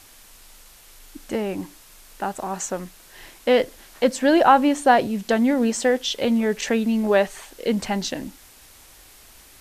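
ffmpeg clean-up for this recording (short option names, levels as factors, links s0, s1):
-af "afwtdn=0.004"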